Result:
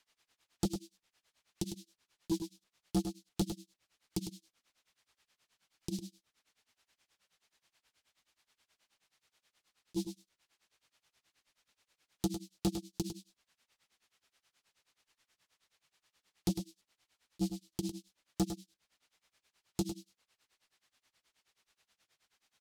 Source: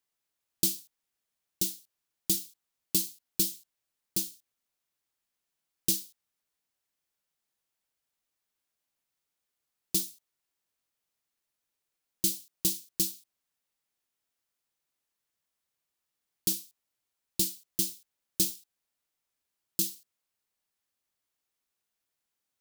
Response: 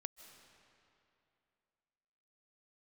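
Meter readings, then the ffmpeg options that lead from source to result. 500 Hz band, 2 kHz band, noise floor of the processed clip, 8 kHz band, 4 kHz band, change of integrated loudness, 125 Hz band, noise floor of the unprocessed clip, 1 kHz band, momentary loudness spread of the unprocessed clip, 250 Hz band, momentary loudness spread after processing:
+4.0 dB, −6.5 dB, below −85 dBFS, −15.5 dB, −11.0 dB, −9.5 dB, +5.0 dB, below −85 dBFS, can't be measured, 12 LU, +4.5 dB, 12 LU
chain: -filter_complex "[0:a]lowpass=3500,aemphasis=mode=production:type=75kf,acrossover=split=610[link_01][link_02];[link_01]flanger=delay=15.5:depth=5.2:speed=0.98[link_03];[link_02]acompressor=threshold=-54dB:ratio=6[link_04];[link_03][link_04]amix=inputs=2:normalize=0,tremolo=f=9.4:d=0.96,asoftclip=type=tanh:threshold=-39.5dB,asplit=2[link_05][link_06];[link_06]aecho=0:1:103:0.376[link_07];[link_05][link_07]amix=inputs=2:normalize=0,volume=15dB"

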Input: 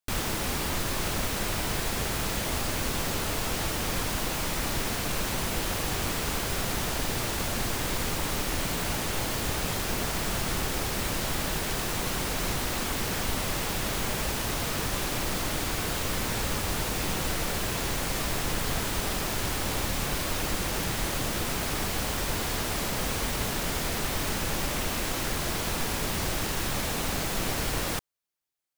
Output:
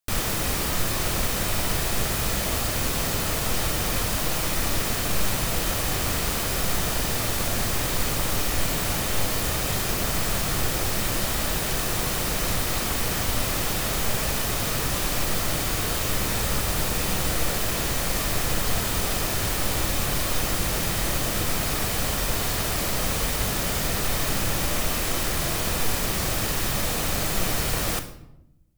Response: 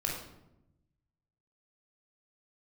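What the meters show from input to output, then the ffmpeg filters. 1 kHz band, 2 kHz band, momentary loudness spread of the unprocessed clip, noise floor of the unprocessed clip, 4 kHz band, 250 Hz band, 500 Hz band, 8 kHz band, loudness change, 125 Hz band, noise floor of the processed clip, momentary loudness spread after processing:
+2.5 dB, +3.0 dB, 0 LU, −31 dBFS, +3.5 dB, +2.5 dB, +3.0 dB, +5.0 dB, +4.5 dB, +4.5 dB, −27 dBFS, 0 LU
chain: -filter_complex "[0:a]asplit=2[link_01][link_02];[1:a]atrim=start_sample=2205,highshelf=frequency=5300:gain=11[link_03];[link_02][link_03]afir=irnorm=-1:irlink=0,volume=-10dB[link_04];[link_01][link_04]amix=inputs=2:normalize=0"

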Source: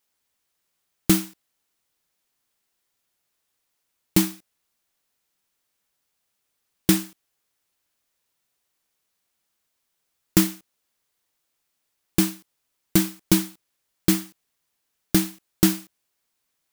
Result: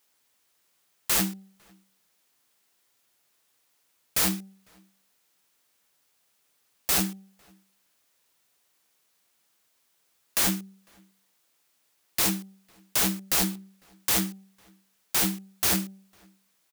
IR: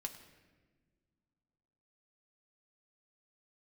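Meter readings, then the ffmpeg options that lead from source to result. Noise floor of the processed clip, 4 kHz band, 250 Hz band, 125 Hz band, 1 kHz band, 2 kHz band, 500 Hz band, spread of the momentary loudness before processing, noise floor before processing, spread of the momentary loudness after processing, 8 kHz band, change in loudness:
−71 dBFS, +1.0 dB, −9.5 dB, −8.5 dB, +3.0 dB, +1.5 dB, −7.0 dB, 8 LU, −77 dBFS, 11 LU, +1.5 dB, −2.5 dB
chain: -filter_complex "[0:a]highpass=frequency=150:poles=1,bandreject=frequency=193.2:width_type=h:width=4,bandreject=frequency=386.4:width_type=h:width=4,bandreject=frequency=579.6:width_type=h:width=4,bandreject=frequency=772.8:width_type=h:width=4,acontrast=63,aeval=exprs='(mod(7.5*val(0)+1,2)-1)/7.5':channel_layout=same,asplit=2[link_01][link_02];[link_02]adelay=501.5,volume=-29dB,highshelf=frequency=4000:gain=-11.3[link_03];[link_01][link_03]amix=inputs=2:normalize=0"

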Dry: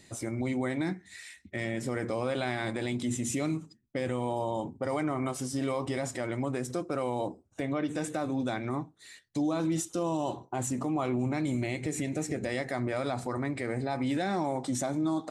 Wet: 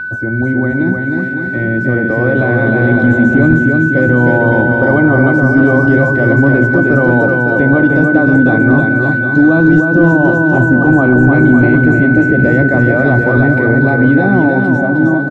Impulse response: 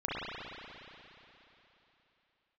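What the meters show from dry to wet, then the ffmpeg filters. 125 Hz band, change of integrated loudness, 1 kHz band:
+24.0 dB, +22.0 dB, +15.5 dB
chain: -filter_complex "[0:a]aecho=1:1:310|558|756.4|915.1|1042:0.631|0.398|0.251|0.158|0.1,acrossover=split=150|2000[link_01][link_02][link_03];[link_03]acompressor=threshold=-48dB:ratio=6[link_04];[link_01][link_02][link_04]amix=inputs=3:normalize=0,tiltshelf=frequency=710:gain=8.5,aeval=exprs='val(0)+0.0355*sin(2*PI*1500*n/s)':channel_layout=same,dynaudnorm=framelen=350:gausssize=13:maxgain=6dB,apsyclip=11.5dB,lowpass=4300,volume=-1.5dB"

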